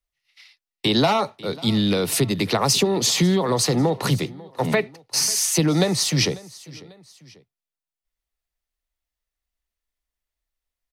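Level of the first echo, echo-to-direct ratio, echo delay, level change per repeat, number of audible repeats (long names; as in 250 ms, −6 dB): −21.0 dB, −20.0 dB, 544 ms, −7.0 dB, 2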